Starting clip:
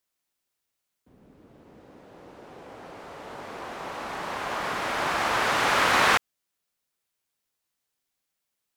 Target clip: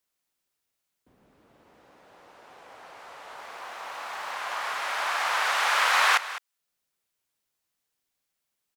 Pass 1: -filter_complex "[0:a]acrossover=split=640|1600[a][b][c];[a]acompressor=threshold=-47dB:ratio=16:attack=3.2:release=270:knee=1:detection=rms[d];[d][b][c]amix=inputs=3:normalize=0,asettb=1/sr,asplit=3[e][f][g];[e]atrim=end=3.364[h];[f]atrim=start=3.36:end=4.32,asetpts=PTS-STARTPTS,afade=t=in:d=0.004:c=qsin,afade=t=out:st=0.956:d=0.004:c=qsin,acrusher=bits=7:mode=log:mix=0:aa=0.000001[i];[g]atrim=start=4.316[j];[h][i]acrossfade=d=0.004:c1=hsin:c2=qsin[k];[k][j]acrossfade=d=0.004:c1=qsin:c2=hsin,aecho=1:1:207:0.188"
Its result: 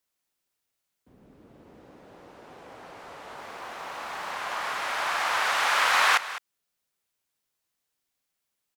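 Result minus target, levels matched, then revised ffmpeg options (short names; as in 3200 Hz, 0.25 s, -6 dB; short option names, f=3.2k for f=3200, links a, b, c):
compressor: peak gain reduction -11 dB
-filter_complex "[0:a]acrossover=split=640|1600[a][b][c];[a]acompressor=threshold=-59dB:ratio=16:attack=3.2:release=270:knee=1:detection=rms[d];[d][b][c]amix=inputs=3:normalize=0,asettb=1/sr,asplit=3[e][f][g];[e]atrim=end=3.364[h];[f]atrim=start=3.36:end=4.32,asetpts=PTS-STARTPTS,afade=t=in:d=0.004:c=qsin,afade=t=out:st=0.956:d=0.004:c=qsin,acrusher=bits=7:mode=log:mix=0:aa=0.000001[i];[g]atrim=start=4.316[j];[h][i]acrossfade=d=0.004:c1=hsin:c2=qsin[k];[k][j]acrossfade=d=0.004:c1=qsin:c2=hsin,aecho=1:1:207:0.188"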